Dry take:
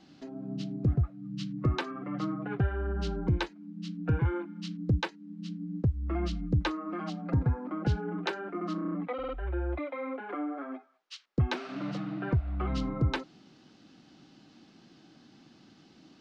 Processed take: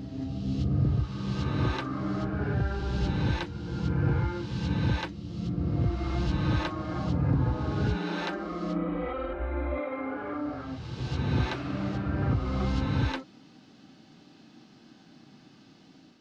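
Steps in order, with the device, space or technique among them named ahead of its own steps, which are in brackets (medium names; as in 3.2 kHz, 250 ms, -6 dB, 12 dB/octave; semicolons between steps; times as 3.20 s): reverse reverb (reverse; reverberation RT60 2.4 s, pre-delay 17 ms, DRR -4.5 dB; reverse); trim -3 dB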